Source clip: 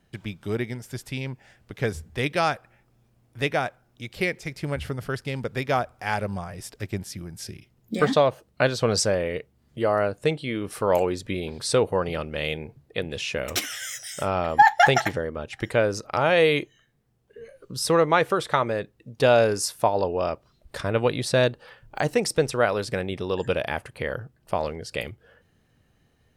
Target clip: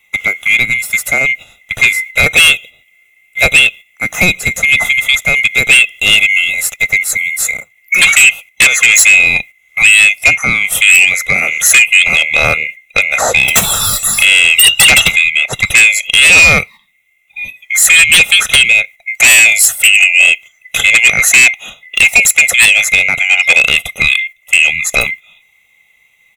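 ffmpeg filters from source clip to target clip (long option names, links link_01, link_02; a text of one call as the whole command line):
ffmpeg -i in.wav -filter_complex "[0:a]afftfilt=real='real(if(lt(b,920),b+92*(1-2*mod(floor(b/92),2)),b),0)':imag='imag(if(lt(b,920),b+92*(1-2*mod(floor(b/92),2)),b),0)':win_size=2048:overlap=0.75,agate=range=-10dB:threshold=-44dB:ratio=16:detection=peak,aecho=1:1:1.5:0.55,asplit=2[link_01][link_02];[link_02]acompressor=threshold=-31dB:ratio=6,volume=-2.5dB[link_03];[link_01][link_03]amix=inputs=2:normalize=0,aexciter=amount=1.2:drive=4.6:freq=2500,aeval=exprs='1.06*sin(PI/2*3.98*val(0)/1.06)':channel_layout=same,volume=-2dB" out.wav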